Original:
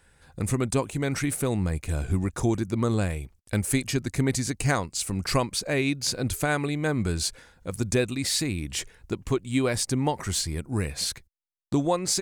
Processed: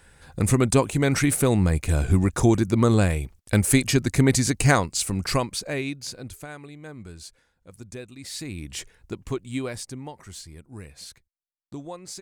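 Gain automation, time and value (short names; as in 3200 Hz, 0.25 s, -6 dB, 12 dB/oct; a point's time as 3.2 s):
4.75 s +6 dB
5.77 s -3 dB
6.53 s -14.5 dB
8.11 s -14.5 dB
8.6 s -3.5 dB
9.5 s -3.5 dB
10.09 s -13 dB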